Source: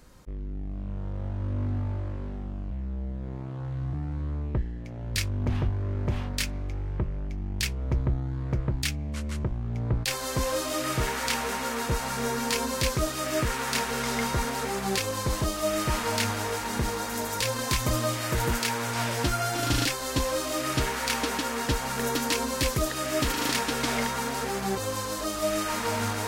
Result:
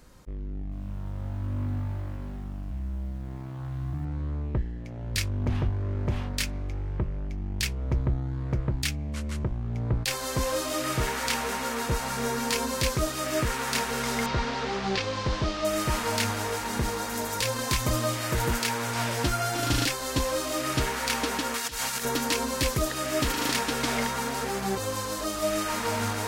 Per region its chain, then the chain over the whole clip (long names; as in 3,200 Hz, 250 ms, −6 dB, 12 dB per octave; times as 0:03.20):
0:00.63–0:04.05: parametric band 450 Hz −10 dB 0.56 octaves + feedback echo at a low word length 89 ms, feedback 55%, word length 9 bits, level −11 dB
0:14.26–0:15.65: linear delta modulator 64 kbit/s, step −27 dBFS + low-pass filter 5,100 Hz 24 dB per octave
0:21.54–0:22.05: tilt shelving filter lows −7.5 dB, about 1,400 Hz + compressor whose output falls as the input rises −31 dBFS, ratio −0.5
whole clip: no processing